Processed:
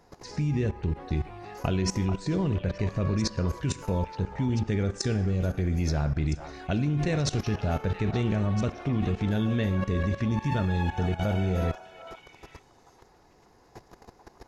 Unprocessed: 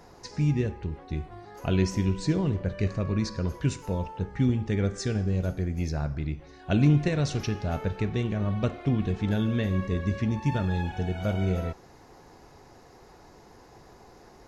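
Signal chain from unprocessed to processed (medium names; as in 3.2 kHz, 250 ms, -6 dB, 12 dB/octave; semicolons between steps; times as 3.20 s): level held to a coarse grid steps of 17 dB; repeats whose band climbs or falls 438 ms, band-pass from 980 Hz, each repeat 1.4 oct, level -6 dB; trim +8.5 dB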